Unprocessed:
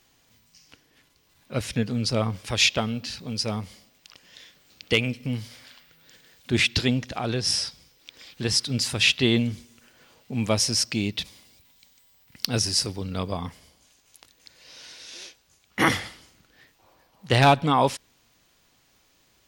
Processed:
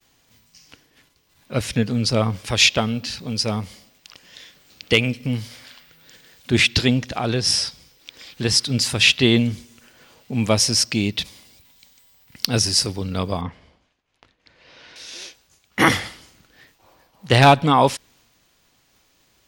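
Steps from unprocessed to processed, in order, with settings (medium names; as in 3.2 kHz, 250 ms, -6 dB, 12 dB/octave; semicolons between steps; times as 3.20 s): 13.41–14.96 s: low-pass 2.5 kHz 12 dB/octave; expander -59 dBFS; trim +5 dB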